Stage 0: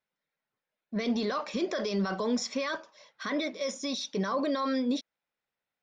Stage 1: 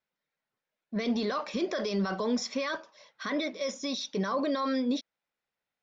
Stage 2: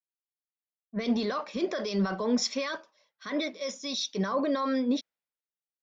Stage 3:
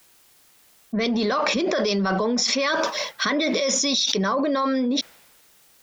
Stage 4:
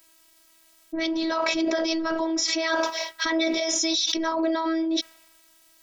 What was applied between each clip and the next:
low-pass 6.9 kHz 24 dB/octave
three bands expanded up and down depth 100%; trim +1 dB
level flattener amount 100%
robot voice 324 Hz

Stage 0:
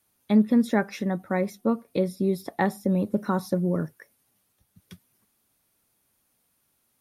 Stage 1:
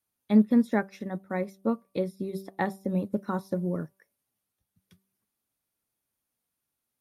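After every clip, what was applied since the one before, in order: de-hum 193 Hz, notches 6; upward expansion 1.5:1, over -41 dBFS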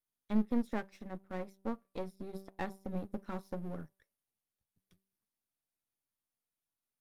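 partial rectifier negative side -12 dB; trim -7 dB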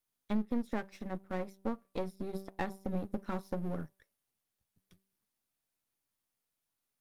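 compression 3:1, threshold -35 dBFS, peak gain reduction 9 dB; trim +5 dB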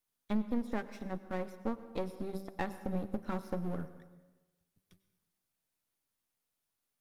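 plate-style reverb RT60 1.2 s, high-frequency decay 0.75×, pre-delay 85 ms, DRR 13 dB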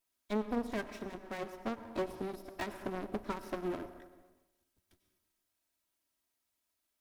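comb filter that takes the minimum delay 3.1 ms; trim +4.5 dB

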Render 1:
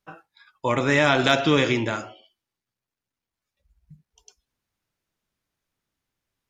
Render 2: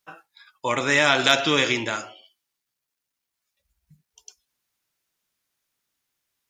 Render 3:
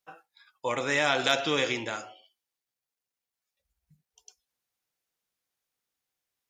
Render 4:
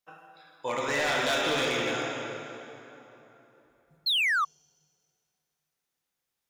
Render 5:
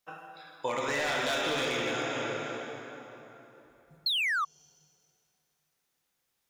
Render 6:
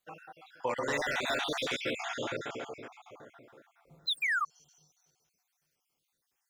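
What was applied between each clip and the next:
tilt EQ +2.5 dB/octave
small resonant body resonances 500/750 Hz, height 7 dB, ringing for 35 ms; trim -7.5 dB
plate-style reverb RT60 3.2 s, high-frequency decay 0.7×, DRR -2 dB; painted sound fall, 4.06–4.45 s, 1.1–4.4 kHz -22 dBFS; overload inside the chain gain 20.5 dB; trim -2.5 dB
compression 5:1, threshold -34 dBFS, peak gain reduction 8.5 dB; trim +5 dB
random holes in the spectrogram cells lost 46%

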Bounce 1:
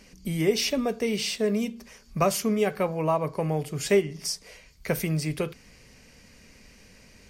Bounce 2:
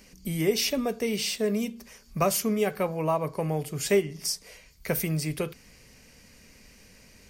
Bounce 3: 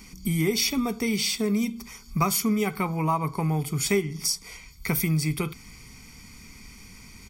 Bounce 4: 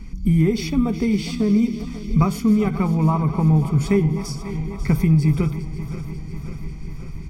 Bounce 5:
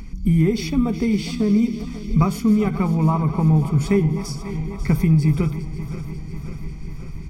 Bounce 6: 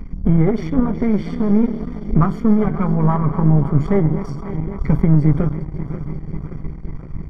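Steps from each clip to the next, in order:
treble shelf 11 kHz +11.5 dB; trim -1.5 dB
comb 0.9 ms, depth 82%; compression 1.5:1, threshold -31 dBFS, peak gain reduction 5 dB; trim +4 dB
backward echo that repeats 271 ms, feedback 81%, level -13.5 dB; RIAA curve playback
upward compressor, threshold -36 dBFS
partial rectifier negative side -12 dB; Savitzky-Golay filter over 41 samples; trim +6 dB

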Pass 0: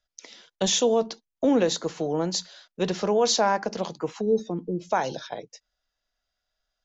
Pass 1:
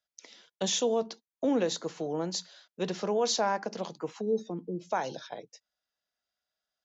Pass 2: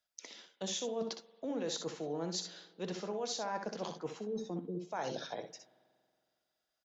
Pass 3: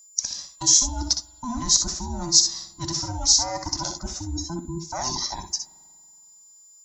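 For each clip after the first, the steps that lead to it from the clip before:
high-pass 120 Hz 12 dB/octave; trim -6 dB
reverse; compression 6:1, threshold -37 dBFS, peak gain reduction 13.5 dB; reverse; early reflections 62 ms -8 dB, 73 ms -15.5 dB; spring tank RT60 2.2 s, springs 46 ms, chirp 45 ms, DRR 19 dB; trim +1 dB
every band turned upside down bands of 500 Hz; resonant high shelf 4 kHz +11.5 dB, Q 3; whistle 7.1 kHz -57 dBFS; trim +8 dB

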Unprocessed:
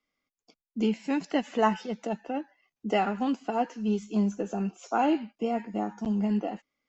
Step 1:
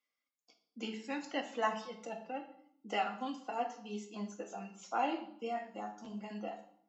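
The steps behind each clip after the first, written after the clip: reverb removal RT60 1.3 s; high-pass 970 Hz 6 dB/octave; on a send at -2.5 dB: reverberation RT60 0.65 s, pre-delay 4 ms; on the sum: trim -5 dB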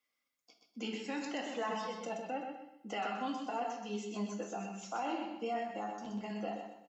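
peak limiter -32 dBFS, peak gain reduction 11 dB; on a send: feedback delay 126 ms, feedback 32%, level -6 dB; on the sum: trim +3 dB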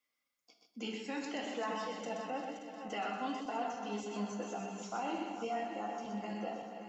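backward echo that repeats 288 ms, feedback 68%, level -9 dB; trim -1 dB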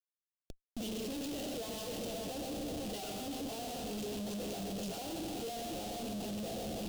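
rattle on loud lows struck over -52 dBFS, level -39 dBFS; Schmitt trigger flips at -50.5 dBFS; high-order bell 1.4 kHz -13.5 dB; trim +2 dB

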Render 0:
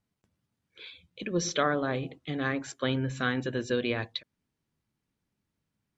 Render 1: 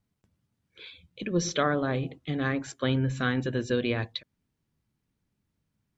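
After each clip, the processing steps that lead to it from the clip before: bass shelf 200 Hz +7 dB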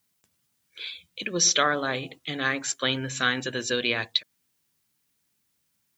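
tilt EQ +4 dB/octave; trim +3.5 dB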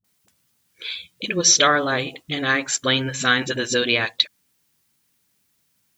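phase dispersion highs, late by 44 ms, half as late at 340 Hz; trim +6 dB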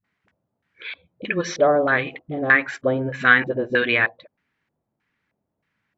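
LFO low-pass square 1.6 Hz 650–1900 Hz; trim -1 dB

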